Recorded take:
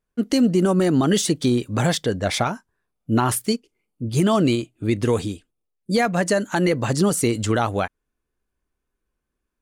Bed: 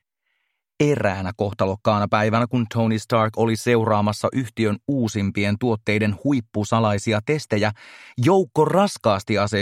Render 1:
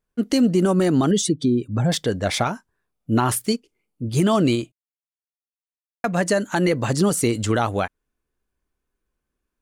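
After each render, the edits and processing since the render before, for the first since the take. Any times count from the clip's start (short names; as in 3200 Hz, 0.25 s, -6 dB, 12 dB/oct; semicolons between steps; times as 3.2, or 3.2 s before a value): 1.11–1.92 spectral contrast raised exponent 1.6; 4.72–6.04 mute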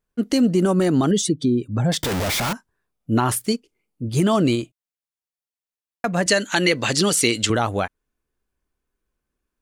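2.03–2.53 infinite clipping; 6.26–7.5 weighting filter D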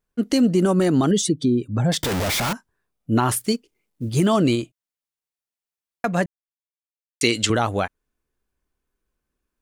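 3.22–4.26 companded quantiser 8-bit; 6.26–7.21 mute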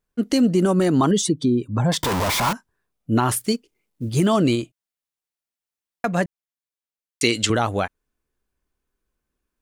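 0.99–2.51 bell 1000 Hz +12 dB 0.37 oct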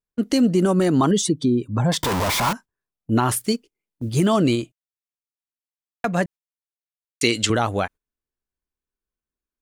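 gate -36 dBFS, range -13 dB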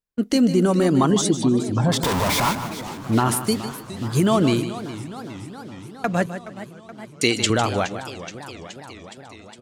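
feedback echo 0.152 s, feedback 18%, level -11 dB; warbling echo 0.418 s, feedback 72%, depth 199 cents, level -14.5 dB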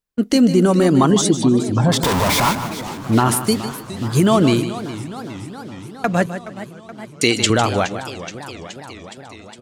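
gain +4 dB; limiter -1 dBFS, peak gain reduction 1.5 dB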